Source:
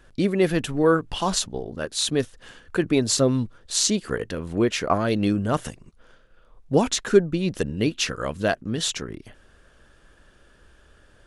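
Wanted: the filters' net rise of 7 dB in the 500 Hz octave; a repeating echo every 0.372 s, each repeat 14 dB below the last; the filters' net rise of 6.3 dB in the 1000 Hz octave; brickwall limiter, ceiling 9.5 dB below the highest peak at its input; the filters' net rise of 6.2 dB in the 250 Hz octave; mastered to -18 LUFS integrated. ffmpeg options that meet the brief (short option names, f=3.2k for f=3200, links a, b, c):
-af "equalizer=f=250:t=o:g=6,equalizer=f=500:t=o:g=5.5,equalizer=f=1k:t=o:g=6,alimiter=limit=-7.5dB:level=0:latency=1,aecho=1:1:372|744:0.2|0.0399,volume=2.5dB"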